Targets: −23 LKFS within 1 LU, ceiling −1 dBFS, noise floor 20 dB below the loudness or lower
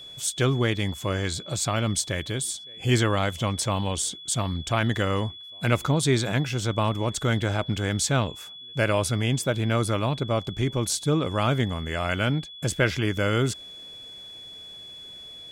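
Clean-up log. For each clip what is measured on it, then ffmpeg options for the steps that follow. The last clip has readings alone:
interfering tone 3,400 Hz; level of the tone −40 dBFS; integrated loudness −25.5 LKFS; sample peak −8.5 dBFS; target loudness −23.0 LKFS
→ -af "bandreject=frequency=3400:width=30"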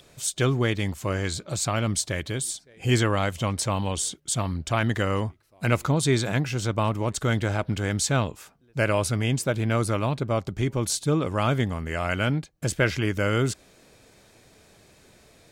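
interfering tone none found; integrated loudness −26.0 LKFS; sample peak −9.0 dBFS; target loudness −23.0 LKFS
→ -af "volume=3dB"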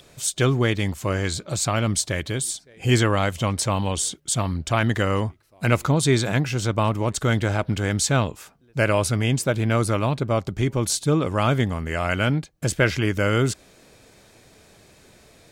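integrated loudness −23.0 LKFS; sample peak −6.0 dBFS; background noise floor −54 dBFS

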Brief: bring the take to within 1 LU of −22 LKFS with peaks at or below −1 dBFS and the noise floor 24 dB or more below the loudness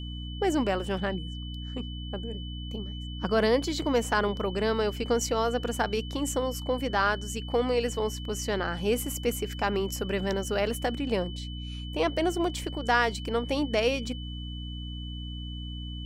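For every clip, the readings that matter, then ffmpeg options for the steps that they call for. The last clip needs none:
mains hum 60 Hz; hum harmonics up to 300 Hz; level of the hum −35 dBFS; interfering tone 3,000 Hz; level of the tone −43 dBFS; integrated loudness −29.5 LKFS; sample peak −11.0 dBFS; target loudness −22.0 LKFS
→ -af "bandreject=frequency=60:width_type=h:width=6,bandreject=frequency=120:width_type=h:width=6,bandreject=frequency=180:width_type=h:width=6,bandreject=frequency=240:width_type=h:width=6,bandreject=frequency=300:width_type=h:width=6"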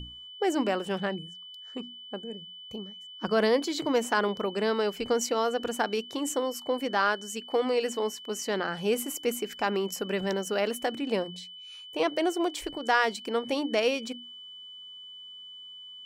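mains hum none found; interfering tone 3,000 Hz; level of the tone −43 dBFS
→ -af "bandreject=frequency=3000:width=30"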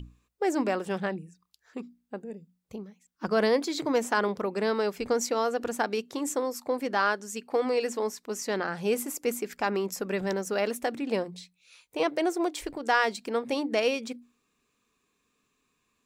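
interfering tone none found; integrated loudness −29.0 LKFS; sample peak −11.5 dBFS; target loudness −22.0 LKFS
→ -af "volume=7dB"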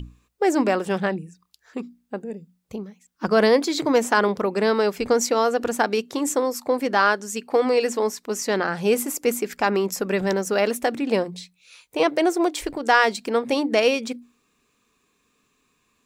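integrated loudness −22.0 LKFS; sample peak −4.5 dBFS; background noise floor −69 dBFS

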